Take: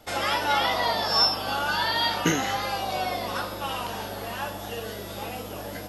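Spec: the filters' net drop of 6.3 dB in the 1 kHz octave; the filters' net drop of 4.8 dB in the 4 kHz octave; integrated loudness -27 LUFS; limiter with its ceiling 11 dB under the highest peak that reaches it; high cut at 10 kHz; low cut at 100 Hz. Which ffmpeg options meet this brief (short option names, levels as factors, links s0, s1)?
-af "highpass=100,lowpass=10000,equalizer=f=1000:t=o:g=-8,equalizer=f=4000:t=o:g=-6.5,volume=1.88,alimiter=limit=0.158:level=0:latency=1"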